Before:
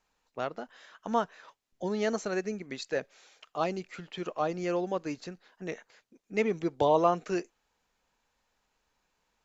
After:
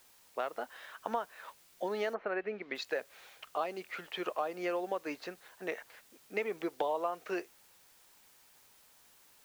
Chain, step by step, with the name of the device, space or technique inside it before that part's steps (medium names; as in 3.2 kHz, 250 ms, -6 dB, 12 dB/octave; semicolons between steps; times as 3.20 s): baby monitor (band-pass 480–3300 Hz; compression, threshold -36 dBFS, peak gain reduction 15 dB; white noise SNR 24 dB); 2.13–2.74 s: low-pass 2.1 kHz -> 4.3 kHz 24 dB/octave; trim +5 dB